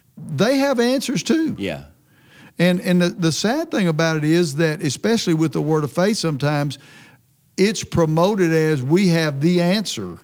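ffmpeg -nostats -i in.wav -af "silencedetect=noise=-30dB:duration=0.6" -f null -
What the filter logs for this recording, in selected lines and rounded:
silence_start: 1.81
silence_end: 2.59 | silence_duration: 0.79
silence_start: 6.75
silence_end: 7.58 | silence_duration: 0.83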